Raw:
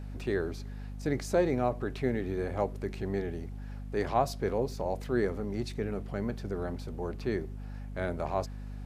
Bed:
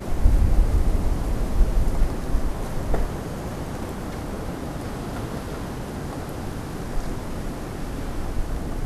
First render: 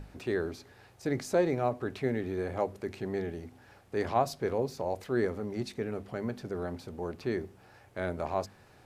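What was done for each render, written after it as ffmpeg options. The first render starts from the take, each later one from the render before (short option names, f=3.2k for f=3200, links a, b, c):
-af "bandreject=f=50:t=h:w=6,bandreject=f=100:t=h:w=6,bandreject=f=150:t=h:w=6,bandreject=f=200:t=h:w=6,bandreject=f=250:t=h:w=6"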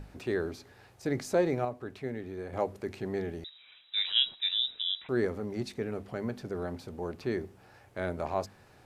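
-filter_complex "[0:a]asettb=1/sr,asplit=3[a][b][c];[a]atrim=end=3.444[d];[b]atrim=start=3.44:end=5.09,asetpts=PTS-STARTPTS,afade=t=in:d=0.004:c=qsin,afade=t=out:st=1.646:d=0.004:c=qsin,lowpass=f=3.4k:t=q:w=0.5098,lowpass=f=3.4k:t=q:w=0.6013,lowpass=f=3.4k:t=q:w=0.9,lowpass=f=3.4k:t=q:w=2.563,afreqshift=-4000[e];[c]atrim=start=5.086[f];[d][e]acrossfade=d=0.004:c1=hsin:c2=qsin[g];[g][f]acrossfade=d=0.004:c1=qsin:c2=hsin,asplit=3[h][i][j];[h]atrim=end=1.652[k];[i]atrim=start=1.648:end=2.532,asetpts=PTS-STARTPTS,volume=-6dB[l];[j]atrim=start=2.528[m];[k][l]acrossfade=d=0.004:c1=hsin:c2=hsin[n];[n][m]acrossfade=d=0.004:c1=hsin:c2=hsin"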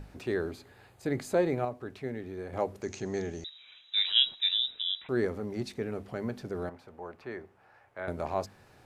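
-filter_complex "[0:a]asettb=1/sr,asplit=3[a][b][c];[a]atrim=end=0.514[d];[b]atrim=start=0.51:end=1.64,asetpts=PTS-STARTPTS,afade=t=in:d=0.004:c=qsin,afade=t=out:st=1.126:d=0.004:c=qsin,equalizer=f=5.6k:w=7:g=-13[e];[c]atrim=start=1.636[f];[d][e]acrossfade=d=0.004:c1=hsin:c2=qsin[g];[g][f]acrossfade=d=0.004:c1=qsin:c2=hsin,asettb=1/sr,asplit=3[h][i][j];[h]atrim=end=2.824[k];[i]atrim=start=2.82:end=4.57,asetpts=PTS-STARTPTS,afade=t=in:d=0.004:c=qsin,afade=t=out:st=1.746:d=0.004:c=qsin,lowpass=f=6.5k:t=q:w=11[l];[j]atrim=start=4.566[m];[k][l]acrossfade=d=0.004:c1=hsin:c2=qsin[n];[n][m]acrossfade=d=0.004:c1=qsin:c2=hsin,asettb=1/sr,asplit=3[o][p][q];[o]atrim=end=6.694[r];[p]atrim=start=6.69:end=8.08,asetpts=PTS-STARTPTS,afade=t=in:d=0.004:c=qsin,afade=t=out:st=1.386:d=0.004:c=qsin,acrossover=split=560 2400:gain=0.251 1 0.2[s][t][u];[s][t][u]amix=inputs=3:normalize=0[v];[q]atrim=start=8.076[w];[r][v]acrossfade=d=0.004:c1=hsin:c2=qsin[x];[x][w]acrossfade=d=0.004:c1=qsin:c2=hsin"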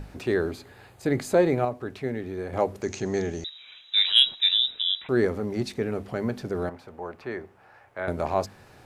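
-af "acontrast=64"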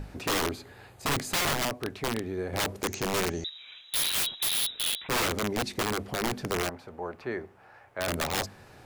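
-af "aeval=exprs='(mod(12.6*val(0)+1,2)-1)/12.6':c=same"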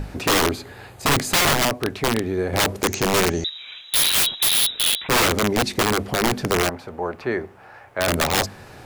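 -af "volume=9.5dB"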